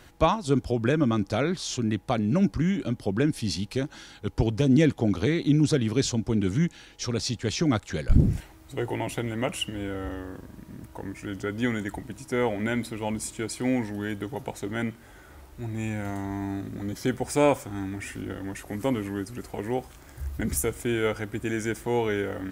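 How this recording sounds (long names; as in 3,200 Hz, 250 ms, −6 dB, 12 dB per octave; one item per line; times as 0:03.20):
background noise floor −50 dBFS
spectral slope −6.0 dB per octave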